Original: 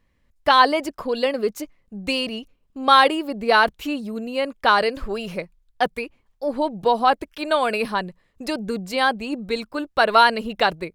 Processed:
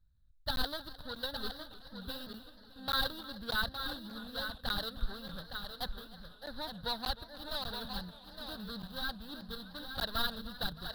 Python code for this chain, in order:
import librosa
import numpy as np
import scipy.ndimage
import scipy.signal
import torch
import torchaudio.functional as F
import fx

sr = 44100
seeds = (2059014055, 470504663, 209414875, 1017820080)

p1 = scipy.ndimage.median_filter(x, 41, mode='constant')
p2 = fx.curve_eq(p1, sr, hz=(110.0, 370.0, 1600.0, 2300.0, 3900.0, 6500.0, 12000.0), db=(0, -25, -2, -28, 12, -21, 3))
p3 = p2 + fx.echo_single(p2, sr, ms=863, db=-8.0, dry=0)
p4 = fx.buffer_crackle(p3, sr, first_s=0.56, period_s=0.59, block=512, kind='zero')
p5 = fx.echo_warbled(p4, sr, ms=307, feedback_pct=79, rate_hz=2.8, cents=58, wet_db=-18.0)
y = F.gain(torch.from_numpy(p5), -2.0).numpy()